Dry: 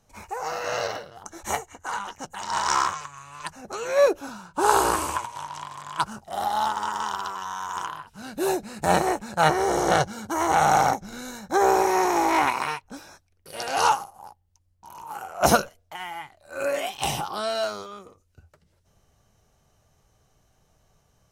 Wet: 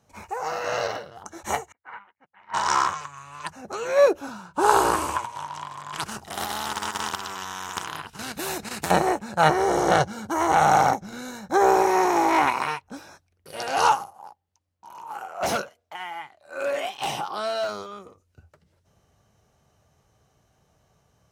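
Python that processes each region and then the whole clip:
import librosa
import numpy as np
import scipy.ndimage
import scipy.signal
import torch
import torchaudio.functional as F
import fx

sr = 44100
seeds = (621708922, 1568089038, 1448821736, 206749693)

y = fx.chain(x, sr, fx.ladder_lowpass(hz=2400.0, resonance_pct=65),
    fx.upward_expand(threshold_db=-55.0, expansion=2.5), at=(1.72, 2.54))
y = fx.chain(y, sr, fx.peak_eq(hz=560.0, db=-10.0, octaves=0.4),
    fx.level_steps(step_db=10),
    fx.spectral_comp(ratio=2.0), at=(5.93, 8.91))
y = fx.chain(y, sr, fx.highpass(hz=340.0, slope=6),
    fx.high_shelf(hz=8400.0, db=-7.0),
    fx.overload_stage(gain_db=22.5), at=(14.13, 17.69))
y = scipy.signal.sosfilt(scipy.signal.butter(2, 65.0, 'highpass', fs=sr, output='sos'), y)
y = fx.high_shelf(y, sr, hz=4300.0, db=-5.0)
y = y * 10.0 ** (1.5 / 20.0)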